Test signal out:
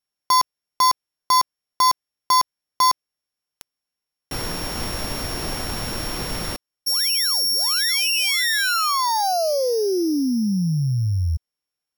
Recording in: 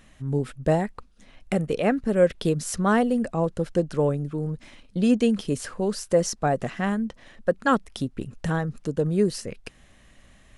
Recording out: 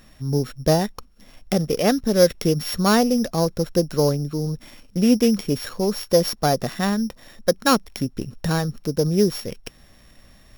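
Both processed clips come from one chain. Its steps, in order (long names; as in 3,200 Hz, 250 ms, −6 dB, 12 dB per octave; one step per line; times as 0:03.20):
samples sorted by size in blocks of 8 samples
level +3.5 dB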